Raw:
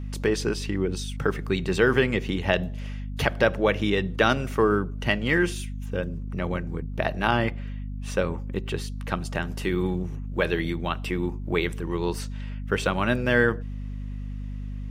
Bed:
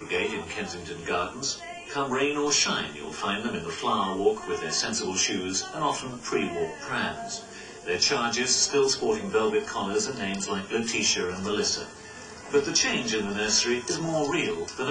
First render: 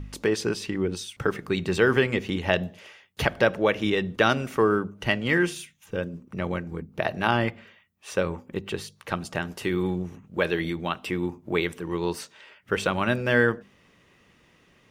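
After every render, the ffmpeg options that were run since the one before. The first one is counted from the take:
-af "bandreject=f=50:t=h:w=4,bandreject=f=100:t=h:w=4,bandreject=f=150:t=h:w=4,bandreject=f=200:t=h:w=4,bandreject=f=250:t=h:w=4"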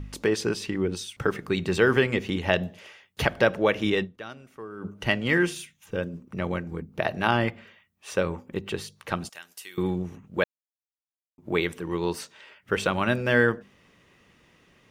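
-filter_complex "[0:a]asettb=1/sr,asplit=3[a][b][c];[a]atrim=end=9.294[d];[b]atrim=start=9.29:end=9.78,asetpts=PTS-STARTPTS,afade=t=in:d=0.004:c=qsin,afade=t=out:st=0.486:d=0.004:c=qsin,aderivative[e];[c]atrim=start=9.776[f];[d][e]acrossfade=d=0.004:c1=hsin:c2=qsin[g];[g][f]acrossfade=d=0.004:c1=qsin:c2=hsin,asplit=5[h][i][j][k][l];[h]atrim=end=4.33,asetpts=PTS-STARTPTS,afade=t=out:st=4.03:d=0.3:c=exp:silence=0.112202[m];[i]atrim=start=4.33:end=4.55,asetpts=PTS-STARTPTS,volume=-19dB[n];[j]atrim=start=4.55:end=10.44,asetpts=PTS-STARTPTS,afade=t=in:d=0.3:c=exp:silence=0.112202,afade=t=out:st=5.886:d=0.004:c=hsin[o];[k]atrim=start=10.44:end=11.38,asetpts=PTS-STARTPTS,volume=0[p];[l]atrim=start=11.38,asetpts=PTS-STARTPTS,afade=t=in:d=0.004:c=hsin[q];[m][n][o][p][q]concat=n=5:v=0:a=1"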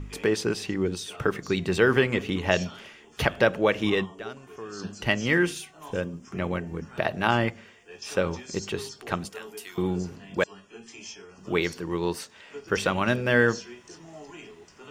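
-filter_complex "[1:a]volume=-18dB[a];[0:a][a]amix=inputs=2:normalize=0"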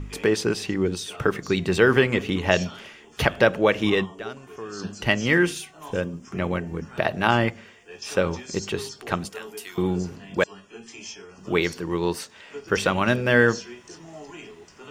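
-af "volume=3dB"

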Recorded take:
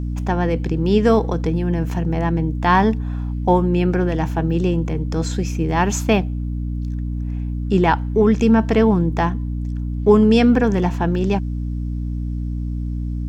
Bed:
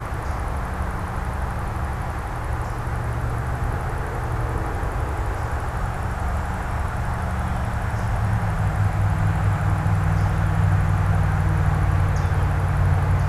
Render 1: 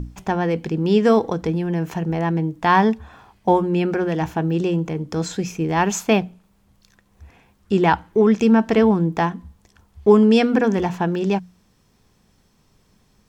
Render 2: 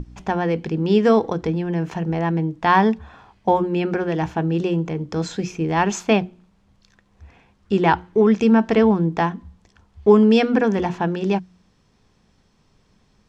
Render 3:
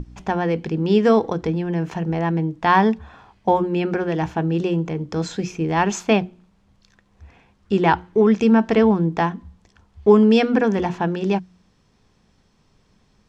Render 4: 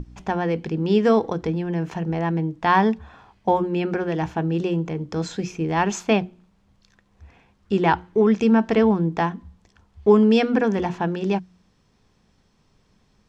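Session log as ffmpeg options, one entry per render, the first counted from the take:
-af "bandreject=f=60:t=h:w=6,bandreject=f=120:t=h:w=6,bandreject=f=180:t=h:w=6,bandreject=f=240:t=h:w=6,bandreject=f=300:t=h:w=6"
-af "lowpass=6k,bandreject=f=60:t=h:w=6,bandreject=f=120:t=h:w=6,bandreject=f=180:t=h:w=6,bandreject=f=240:t=h:w=6,bandreject=f=300:t=h:w=6,bandreject=f=360:t=h:w=6"
-af anull
-af "volume=-2dB"

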